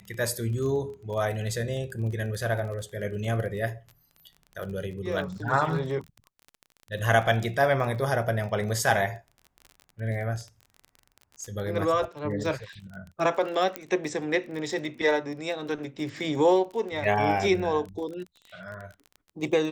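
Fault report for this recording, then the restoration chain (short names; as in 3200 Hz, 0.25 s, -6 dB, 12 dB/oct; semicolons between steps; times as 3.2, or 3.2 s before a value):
crackle 28/s -35 dBFS
13.76 pop -14 dBFS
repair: de-click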